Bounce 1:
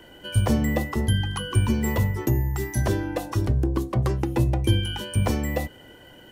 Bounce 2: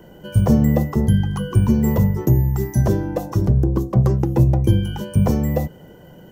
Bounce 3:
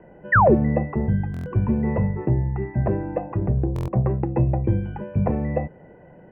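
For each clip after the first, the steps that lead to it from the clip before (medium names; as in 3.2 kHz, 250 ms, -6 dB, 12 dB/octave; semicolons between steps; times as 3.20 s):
FFT filter 110 Hz 0 dB, 170 Hz +12 dB, 270 Hz -3 dB, 440 Hz +2 dB, 1.1 kHz -4 dB, 2.3 kHz -12 dB, 4 kHz -11 dB, 6.2 kHz -3 dB, 9.8 kHz -11 dB, 14 kHz 0 dB; trim +4.5 dB
rippled Chebyshev low-pass 2.7 kHz, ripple 6 dB; painted sound fall, 0.32–0.55 s, 310–2000 Hz -15 dBFS; buffer glitch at 1.32/3.74 s, samples 1024, times 5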